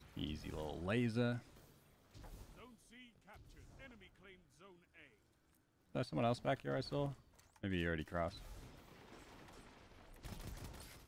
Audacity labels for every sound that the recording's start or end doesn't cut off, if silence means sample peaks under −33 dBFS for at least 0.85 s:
5.960000	8.260000	sound